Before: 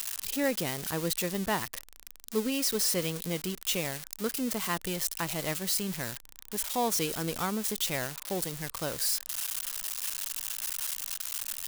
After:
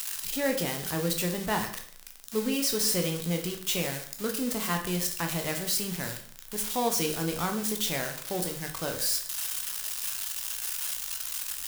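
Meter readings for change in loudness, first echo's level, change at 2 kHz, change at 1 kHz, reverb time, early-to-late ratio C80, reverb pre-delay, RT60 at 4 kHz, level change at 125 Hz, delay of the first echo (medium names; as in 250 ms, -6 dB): +1.5 dB, no echo, +1.5 dB, +1.5 dB, 0.55 s, 13.0 dB, 11 ms, 0.50 s, +3.5 dB, no echo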